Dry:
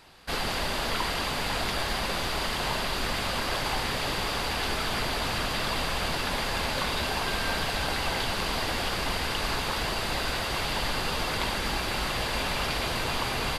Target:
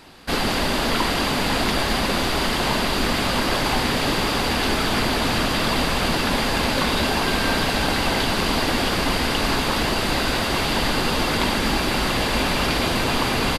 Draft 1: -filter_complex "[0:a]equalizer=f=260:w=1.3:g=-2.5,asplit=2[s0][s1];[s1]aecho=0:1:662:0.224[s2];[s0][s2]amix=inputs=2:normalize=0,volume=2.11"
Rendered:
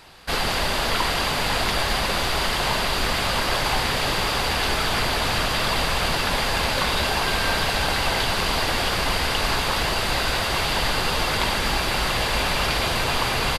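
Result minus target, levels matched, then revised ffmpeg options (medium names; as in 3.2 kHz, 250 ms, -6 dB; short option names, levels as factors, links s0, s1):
250 Hz band -7.5 dB
-filter_complex "[0:a]equalizer=f=260:w=1.3:g=8,asplit=2[s0][s1];[s1]aecho=0:1:662:0.224[s2];[s0][s2]amix=inputs=2:normalize=0,volume=2.11"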